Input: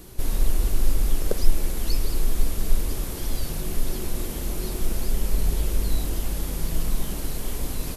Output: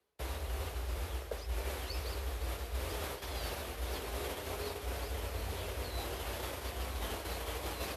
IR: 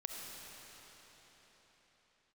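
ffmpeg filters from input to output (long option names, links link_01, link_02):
-filter_complex "[0:a]agate=range=-33dB:threshold=-23dB:ratio=3:detection=peak,acrossover=split=380 4000:gain=0.112 1 0.251[link_01][link_02][link_03];[link_01][link_02][link_03]amix=inputs=3:normalize=0,areverse,acompressor=threshold=-42dB:ratio=10,areverse,flanger=delay=7.5:depth=2.1:regen=-51:speed=0.4:shape=sinusoidal,afreqshift=45,volume=10.5dB"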